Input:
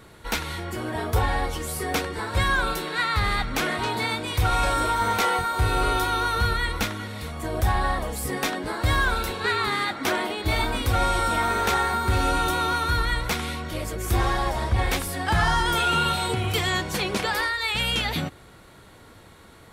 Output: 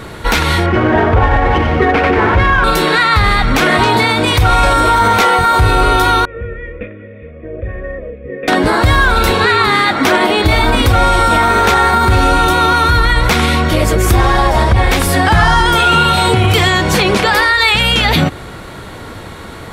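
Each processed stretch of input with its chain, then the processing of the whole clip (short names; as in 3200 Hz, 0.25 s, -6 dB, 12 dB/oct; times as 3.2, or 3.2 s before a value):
0.66–2.64 steep low-pass 2900 Hz + split-band echo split 470 Hz, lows 0.149 s, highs 92 ms, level -6.5 dB + running maximum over 3 samples
6.25–8.48 vocal tract filter e + bell 1800 Hz -13.5 dB 0.67 oct + fixed phaser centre 2000 Hz, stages 4
whole clip: high shelf 5900 Hz -7 dB; compressor 3:1, threshold -26 dBFS; maximiser +21 dB; gain -1 dB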